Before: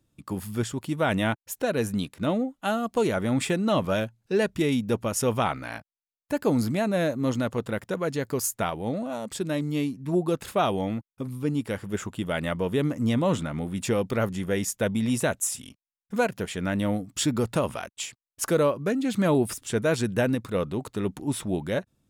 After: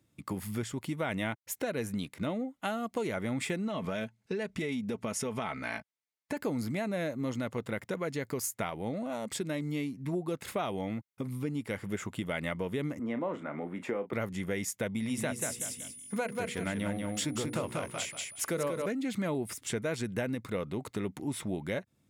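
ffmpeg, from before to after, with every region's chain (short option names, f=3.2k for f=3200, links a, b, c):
-filter_complex "[0:a]asettb=1/sr,asplit=3[a][b][c];[a]atrim=end=3.674[d];[b]atrim=start=3.67:end=6.37,asetpts=PTS-STARTPTS,afade=t=in:d=0.004:c=qsin,afade=t=out:st=2.696:d=0.004:c=qsin,lowpass=10k,aecho=1:1:4.6:0.41,atrim=end_sample=119070,acompressor=threshold=-24dB:ratio=6:attack=3.2:release=140:knee=1:detection=peak[e];[c]atrim=start=6.366[f];[d][e]acrossfade=d=0.004:c1=hsin:c2=qsin[g];[g][f]acrossfade=d=0.004:c1=qsin:c2=hsin,asettb=1/sr,asplit=3[h][i][j];[h]atrim=end=12.994[k];[i]atrim=start=12.99:end=14.13,asetpts=PTS-STARTPTS,afade=t=in:d=0.004:c=qsin,afade=t=out:st=1.136:d=0.004:c=qsin,acrossover=split=230 2000:gain=0.0631 1 0.0794[l][m][n];[l][m][n]amix=inputs=3:normalize=0,asplit=2[o][p];[p]adelay=34,volume=-11dB[q];[o][q]amix=inputs=2:normalize=0,atrim=end_sample=50274[r];[j]atrim=start=14.126[s];[k][r]acrossfade=d=0.004:c1=hsin:c2=qsin[t];[t][s]acrossfade=d=0.004:c1=qsin:c2=hsin,asettb=1/sr,asplit=3[u][v][w];[u]atrim=end=14.994[x];[v]atrim=start=14.99:end=18.86,asetpts=PTS-STARTPTS,afade=t=in:d=0.004:c=qsin,afade=t=out:st=3.866:d=0.004:c=qsin,bandreject=f=60:t=h:w=6,bandreject=f=120:t=h:w=6,bandreject=f=180:t=h:w=6,bandreject=f=240:t=h:w=6,bandreject=f=300:t=h:w=6,bandreject=f=360:t=h:w=6,bandreject=f=420:t=h:w=6,bandreject=f=480:t=h:w=6,aeval=exprs='val(0)+0.00316*sin(2*PI*9900*n/s)':c=same,aecho=1:1:188|376|564:0.596|0.137|0.0315,atrim=end_sample=170667[y];[w]atrim=start=18.856[z];[x][y]acrossfade=d=0.004:c1=hsin:c2=qsin[aa];[aa][z]acrossfade=d=0.004:c1=qsin:c2=hsin,highpass=75,acompressor=threshold=-33dB:ratio=3,equalizer=f=2.1k:t=o:w=0.23:g=9"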